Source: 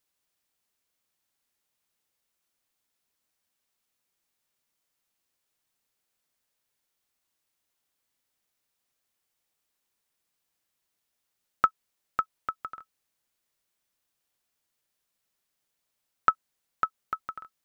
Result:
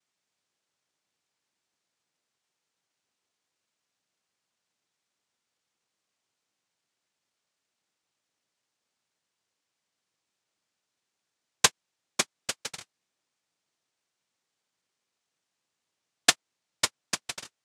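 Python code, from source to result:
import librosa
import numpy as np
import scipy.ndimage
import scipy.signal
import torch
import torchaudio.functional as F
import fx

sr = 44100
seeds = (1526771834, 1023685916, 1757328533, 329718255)

y = fx.noise_vocoder(x, sr, seeds[0], bands=2)
y = y * 10.0 ** (1.5 / 20.0)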